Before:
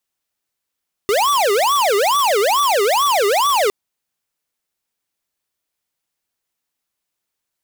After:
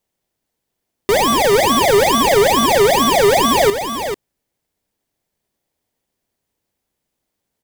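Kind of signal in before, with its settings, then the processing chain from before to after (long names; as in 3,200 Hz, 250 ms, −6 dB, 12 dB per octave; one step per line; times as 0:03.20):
siren wail 395–1,160 Hz 2.3 per second square −15.5 dBFS 2.61 s
in parallel at −3 dB: decimation without filtering 32×
on the sum: single-tap delay 442 ms −8.5 dB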